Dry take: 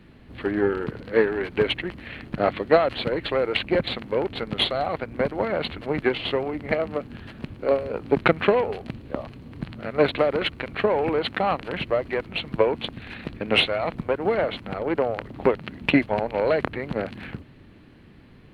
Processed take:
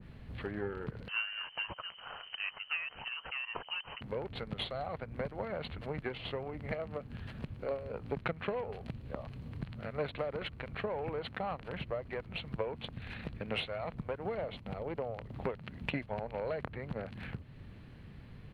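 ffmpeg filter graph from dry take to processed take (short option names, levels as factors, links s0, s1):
-filter_complex "[0:a]asettb=1/sr,asplit=3[s0][s1][s2];[s0]atrim=end=1.084[s3];[s1]atrim=start=1.08:end=4.01,asetpts=PTS-STARTPTS,afade=t=in:d=0.004:c=qsin,afade=t=out:st=2.926:d=0.004:c=qsin,highpass=f=130:p=1,lowpass=f=2700:t=q:w=0.5098,lowpass=f=2700:t=q:w=0.6013,lowpass=f=2700:t=q:w=0.9,lowpass=f=2700:t=q:w=2.563,afreqshift=-3200[s4];[s2]atrim=start=4.006[s5];[s3][s4]acrossfade=d=0.004:c1=hsin:c2=qsin[s6];[s6][s5]acrossfade=d=0.004:c1=qsin:c2=hsin,asettb=1/sr,asplit=3[s7][s8][s9];[s7]atrim=end=14.354[s10];[s8]atrim=start=14.35:end=15.3,asetpts=PTS-STARTPTS,afade=t=in:d=0.004:c=qsin,afade=t=out:st=0.946:d=0.004:c=qsin,agate=range=0.0224:threshold=0.0126:ratio=3:release=100:detection=peak,equalizer=f=1500:w=1.9:g=-6[s11];[s9]atrim=start=15.296[s12];[s10][s11]acrossfade=d=0.004:c1=hsin:c2=qsin[s13];[s13][s12]acrossfade=d=0.004:c1=qsin:c2=hsin,firequalizer=gain_entry='entry(130,0);entry(310,-12);entry(460,-6)':delay=0.05:min_phase=1,acompressor=threshold=0.00631:ratio=2,adynamicequalizer=threshold=0.00282:dfrequency=1800:dqfactor=0.7:tfrequency=1800:tqfactor=0.7:attack=5:release=100:ratio=0.375:range=2:mode=cutabove:tftype=highshelf,volume=1.26"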